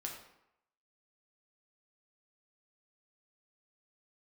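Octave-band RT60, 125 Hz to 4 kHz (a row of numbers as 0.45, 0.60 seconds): 0.70, 0.75, 0.80, 0.85, 0.75, 0.55 seconds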